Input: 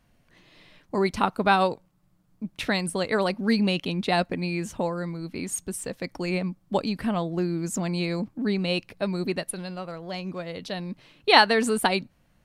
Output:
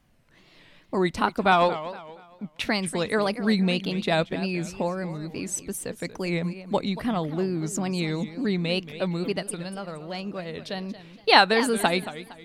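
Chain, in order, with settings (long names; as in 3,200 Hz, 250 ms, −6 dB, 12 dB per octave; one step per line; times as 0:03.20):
tape wow and flutter 140 cents
0:01.52–0:02.62: mid-hump overdrive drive 10 dB, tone 3,900 Hz, clips at −8.5 dBFS
feedback echo with a swinging delay time 233 ms, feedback 35%, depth 200 cents, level −14 dB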